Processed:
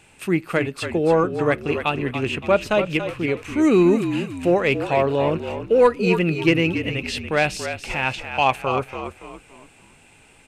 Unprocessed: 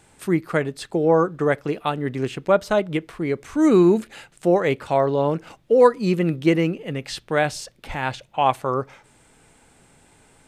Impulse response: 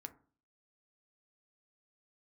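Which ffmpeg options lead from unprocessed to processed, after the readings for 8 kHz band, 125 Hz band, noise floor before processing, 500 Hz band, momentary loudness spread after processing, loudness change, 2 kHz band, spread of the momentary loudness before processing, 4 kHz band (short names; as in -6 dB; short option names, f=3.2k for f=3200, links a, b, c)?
+1.0 dB, +0.5 dB, -57 dBFS, 0.0 dB, 9 LU, +0.5 dB, +5.0 dB, 12 LU, +5.0 dB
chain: -filter_complex "[0:a]equalizer=f=2.6k:t=o:w=0.41:g=13.5,asoftclip=type=tanh:threshold=-4.5dB,asplit=2[a][b];[b]asplit=4[c][d][e][f];[c]adelay=284,afreqshift=-43,volume=-9dB[g];[d]adelay=568,afreqshift=-86,volume=-17.4dB[h];[e]adelay=852,afreqshift=-129,volume=-25.8dB[i];[f]adelay=1136,afreqshift=-172,volume=-34.2dB[j];[g][h][i][j]amix=inputs=4:normalize=0[k];[a][k]amix=inputs=2:normalize=0"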